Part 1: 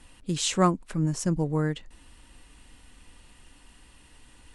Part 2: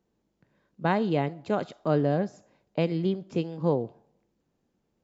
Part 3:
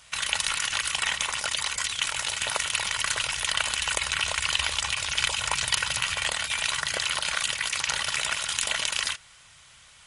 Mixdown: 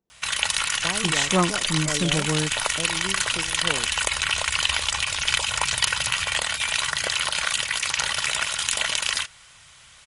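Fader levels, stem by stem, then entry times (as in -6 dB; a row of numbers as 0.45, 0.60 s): +0.5, -8.5, +3.0 dB; 0.75, 0.00, 0.10 s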